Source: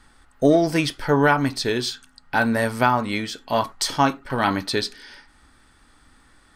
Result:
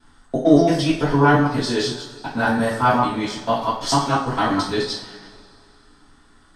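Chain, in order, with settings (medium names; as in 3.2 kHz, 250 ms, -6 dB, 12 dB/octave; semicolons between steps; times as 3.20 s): time reversed locally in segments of 112 ms; low-pass 8.4 kHz 12 dB/octave; peaking EQ 2.2 kHz -6 dB 0.56 oct; two-slope reverb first 0.44 s, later 2.6 s, from -21 dB, DRR -8.5 dB; trim -7 dB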